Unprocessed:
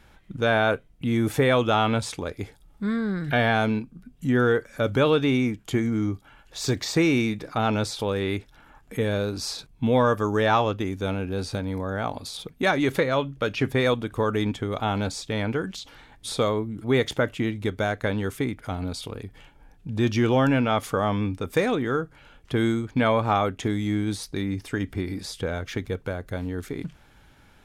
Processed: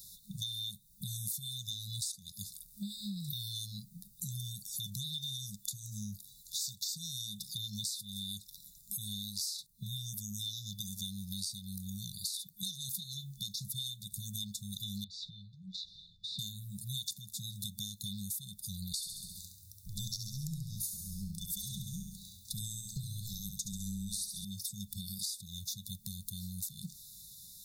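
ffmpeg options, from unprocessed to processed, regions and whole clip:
-filter_complex "[0:a]asettb=1/sr,asplit=3[a][b][c];[a]atrim=end=15.044[d];[b]atrim=start=15.04:end=16.39,asetpts=PTS-STARTPTS,afade=t=in:d=0.004:c=qsin,afade=t=out:st=1.346:d=0.004:c=qsin,acompressor=threshold=-38dB:ratio=8:attack=3.2:release=140:knee=1:detection=peak,lowpass=f=3.4k:w=0.5412,lowpass=f=3.4k:w=1.3066,asplit=2[e][f];[f]adelay=12,volume=-6dB[g];[e][g]amix=inputs=2:normalize=0,atrim=end_sample=59535[h];[c]atrim=start=16.386[i];[d][h]acrossfade=d=0.004:c1=hsin:c2=qsin[j];[j][i]acrossfade=d=0.004:c1=qsin:c2=hsin,asettb=1/sr,asplit=3[k][l][m];[k]atrim=end=18.924[n];[l]atrim=start=18.92:end=24.45,asetpts=PTS-STARTPTS,afade=t=in:d=0.004:c=qsin,afade=t=out:st=5.526:d=0.004:c=qsin,afreqshift=-120,aecho=1:1:68|136|204|272|340|408:0.473|0.246|0.128|0.0665|0.0346|0.018,atrim=end_sample=243873[o];[m]atrim=start=24.446[p];[n][o]acrossfade=d=0.004:c1=hsin:c2=qsin[q];[q][p]acrossfade=d=0.004:c1=qsin:c2=hsin,afftfilt=real='re*(1-between(b*sr/4096,210,3500))':imag='im*(1-between(b*sr/4096,210,3500))':win_size=4096:overlap=0.75,aemphasis=mode=production:type=riaa,acompressor=threshold=-42dB:ratio=6,volume=4.5dB"

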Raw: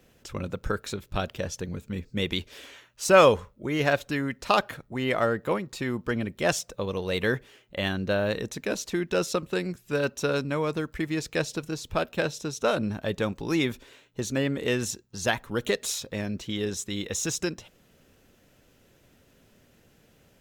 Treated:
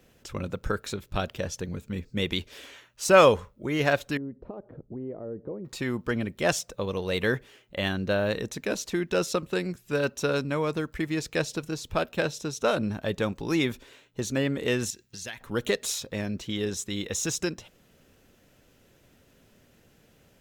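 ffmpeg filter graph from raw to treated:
-filter_complex "[0:a]asettb=1/sr,asplit=3[a][b][c];[a]atrim=end=4.174[d];[b]atrim=start=4.17:end=5.65,asetpts=PTS-STARTPTS,afade=t=in:d=0.004:c=qsin,afade=t=out:st=1.476:d=0.004:c=qsin,acompressor=threshold=-36dB:ratio=3:attack=3.2:release=140:knee=1:detection=peak,lowpass=f=430:t=q:w=1.5[e];[c]atrim=start=5.646[f];[d][e]acrossfade=d=0.004:c1=hsin:c2=qsin[g];[g][f]acrossfade=d=0.004:c1=qsin:c2=hsin,asettb=1/sr,asplit=3[h][i][j];[h]atrim=end=14.904[k];[i]atrim=start=14.9:end=15.41,asetpts=PTS-STARTPTS,afade=t=in:d=0.004:c=qsin,afade=t=out:st=0.506:d=0.004:c=qsin,highshelf=f=1.5k:t=q:w=1.5:g=7,acompressor=threshold=-40dB:ratio=3:attack=3.2:release=140:knee=1:detection=peak[l];[j]atrim=start=15.406[m];[k][l]acrossfade=d=0.004:c1=hsin:c2=qsin[n];[n][m]acrossfade=d=0.004:c1=qsin:c2=hsin"

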